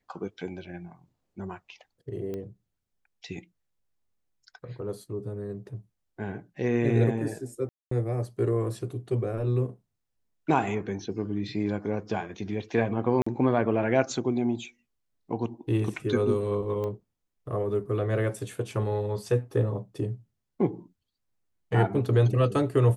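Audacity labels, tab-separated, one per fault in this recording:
2.340000	2.340000	pop -24 dBFS
7.690000	7.910000	gap 0.224 s
13.220000	13.270000	gap 45 ms
16.840000	16.840000	pop -23 dBFS

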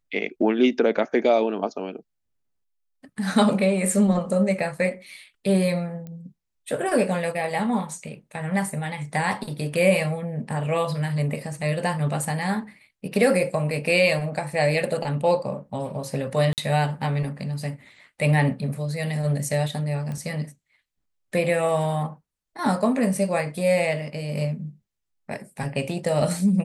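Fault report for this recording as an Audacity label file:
6.070000	6.070000	pop -26 dBFS
16.530000	16.580000	gap 48 ms
20.120000	20.120000	pop -22 dBFS

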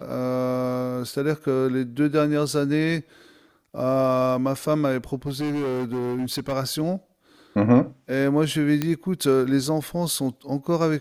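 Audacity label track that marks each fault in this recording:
5.270000	6.530000	clipped -23 dBFS
8.820000	8.820000	pop -10 dBFS

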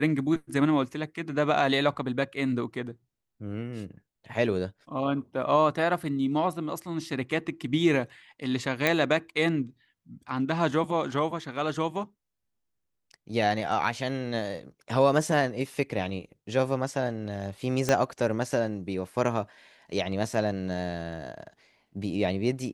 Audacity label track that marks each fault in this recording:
8.870000	8.870000	pop -9 dBFS
17.890000	17.890000	pop -10 dBFS

